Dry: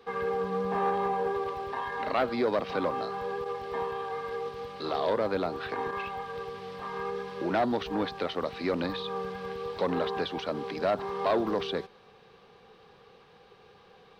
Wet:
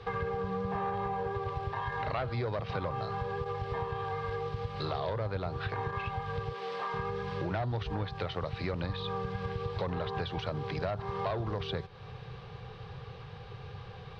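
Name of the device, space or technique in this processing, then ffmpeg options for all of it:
jukebox: -filter_complex "[0:a]asettb=1/sr,asplit=3[link_01][link_02][link_03];[link_01]atrim=end=6.524[link_04];[link_02]atrim=start=6.52:end=6.94,asetpts=PTS-STARTPTS,afade=type=in:duration=0.004:curve=qsin,afade=type=out:start_time=0.416:duration=0.004:curve=qsin,highpass=frequency=270:width=0.5412,highpass=frequency=270:width=1.3066[link_05];[link_03]atrim=start=6.936[link_06];[link_04][link_05]acrossfade=duration=0.004:curve1=hsin:curve2=qsin[link_07];[link_07][link_06]acrossfade=duration=0.004:curve1=qsin:curve2=hsin,lowpass=5400,lowshelf=frequency=170:width_type=q:width=3:gain=12.5,acompressor=threshold=-40dB:ratio=4,volume=7dB"

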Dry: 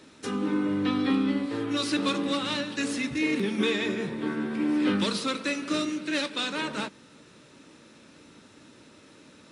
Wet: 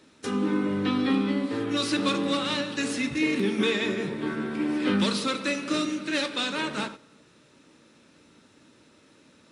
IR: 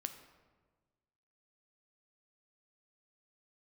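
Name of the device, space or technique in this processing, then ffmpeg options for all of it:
keyed gated reverb: -filter_complex "[0:a]asplit=3[link_01][link_02][link_03];[1:a]atrim=start_sample=2205[link_04];[link_02][link_04]afir=irnorm=-1:irlink=0[link_05];[link_03]apad=whole_len=419610[link_06];[link_05][link_06]sidechaingate=range=-11dB:threshold=-42dB:ratio=16:detection=peak,volume=9dB[link_07];[link_01][link_07]amix=inputs=2:normalize=0,volume=-8.5dB"

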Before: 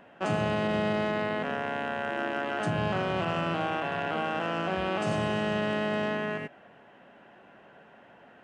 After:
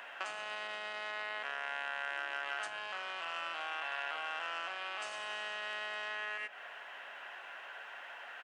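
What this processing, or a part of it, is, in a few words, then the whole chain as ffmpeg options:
serial compression, peaks first: -filter_complex "[0:a]acompressor=threshold=-37dB:ratio=6,acompressor=threshold=-47dB:ratio=2,highpass=1300,asubboost=boost=6.5:cutoff=64,asplit=2[link_01][link_02];[link_02]adelay=991.3,volume=-16dB,highshelf=frequency=4000:gain=-22.3[link_03];[link_01][link_03]amix=inputs=2:normalize=0,volume=12.5dB"

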